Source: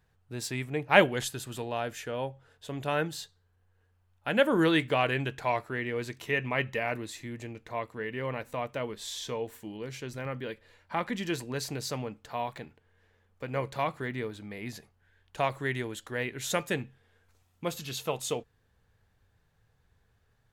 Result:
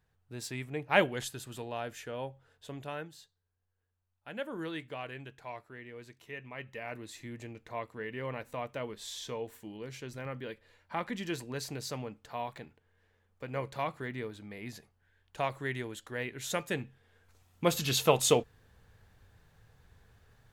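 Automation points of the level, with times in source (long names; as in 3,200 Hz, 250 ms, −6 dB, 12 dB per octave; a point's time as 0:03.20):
0:02.69 −5 dB
0:03.12 −14.5 dB
0:06.55 −14.5 dB
0:07.23 −4 dB
0:16.64 −4 dB
0:17.88 +7.5 dB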